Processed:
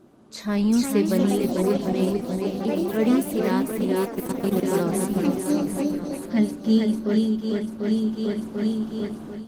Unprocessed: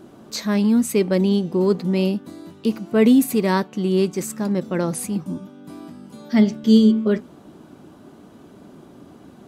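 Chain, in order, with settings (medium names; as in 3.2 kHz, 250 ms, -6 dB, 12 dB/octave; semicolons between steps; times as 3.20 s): shuffle delay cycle 743 ms, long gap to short 1.5:1, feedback 49%, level -4 dB; 4.03–4.63 s: level held to a coarse grid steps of 18 dB; ever faster or slower copies 477 ms, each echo +5 st, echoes 2, each echo -6 dB; level rider gain up to 13 dB; trim -8.5 dB; Opus 20 kbps 48 kHz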